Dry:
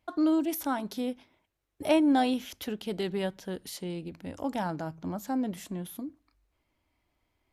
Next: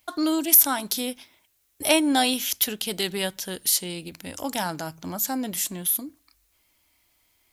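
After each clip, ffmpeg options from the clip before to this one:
-af "crystalizer=i=9.5:c=0"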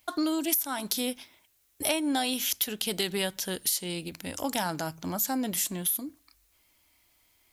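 -af "acompressor=threshold=-24dB:ratio=12"

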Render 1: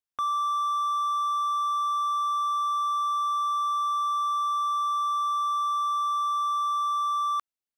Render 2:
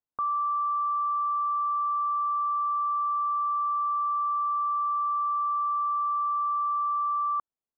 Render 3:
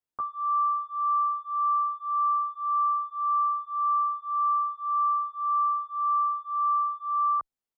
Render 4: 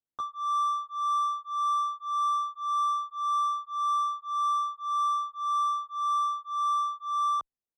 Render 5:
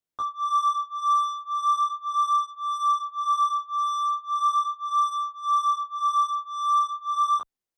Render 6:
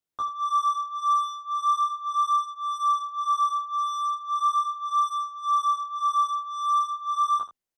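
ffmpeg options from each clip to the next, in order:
-af "lowpass=f=1.2k:w=0.5412,lowpass=f=1.2k:w=1.3066,volume=2dB"
-filter_complex "[0:a]asplit=2[a][b];[b]adelay=10.7,afreqshift=1.8[c];[a][c]amix=inputs=2:normalize=1,volume=3.5dB"
-af "adynamicsmooth=sensitivity=5.5:basefreq=1k,volume=-2dB"
-af "flanger=delay=19:depth=6.1:speed=0.38,volume=7dB"
-af "aecho=1:1:79:0.224"

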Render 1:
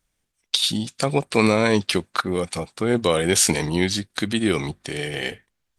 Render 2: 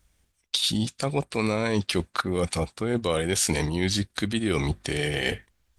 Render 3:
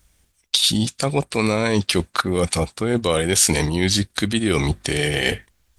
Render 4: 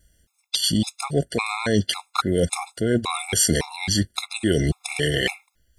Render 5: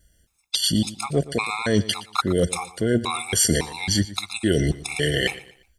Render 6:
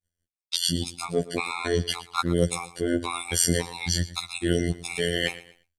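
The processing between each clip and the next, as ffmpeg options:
-af "equalizer=f=60:w=1.4:g=13,areverse,acompressor=threshold=-29dB:ratio=4,areverse,volume=5.5dB"
-af "highshelf=f=4.9k:g=4.5,volume=5.5dB"
-af "afftfilt=real='re*gt(sin(2*PI*1.8*pts/sr)*(1-2*mod(floor(b*sr/1024/690),2)),0)':imag='im*gt(sin(2*PI*1.8*pts/sr)*(1-2*mod(floor(b*sr/1024/690),2)),0)':win_size=1024:overlap=0.75"
-af "aecho=1:1:118|236|354:0.133|0.0453|0.0154"
-af "afftfilt=real='hypot(re,im)*cos(PI*b)':imag='0':win_size=2048:overlap=0.75,agate=range=-33dB:threshold=-51dB:ratio=3:detection=peak"

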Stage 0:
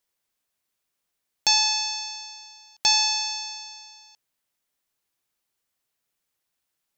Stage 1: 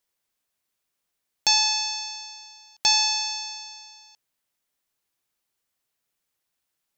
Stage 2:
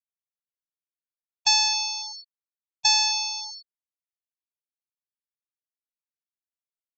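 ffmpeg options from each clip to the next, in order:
-af anull
-af "lowpass=f=8.5k:w=0.5412,lowpass=f=8.5k:w=1.3066,equalizer=f=110:t=o:w=1.1:g=8,afftfilt=real='re*gte(hypot(re,im),0.0794)':imag='im*gte(hypot(re,im),0.0794)':win_size=1024:overlap=0.75"

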